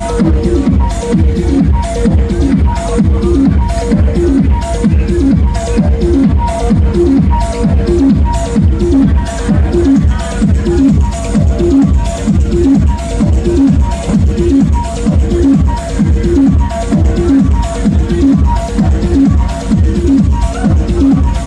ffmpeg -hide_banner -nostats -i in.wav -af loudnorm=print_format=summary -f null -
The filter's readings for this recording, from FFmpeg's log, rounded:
Input Integrated:    -11.0 LUFS
Input True Peak:      -1.2 dBTP
Input LRA:             0.7 LU
Input Threshold:     -21.0 LUFS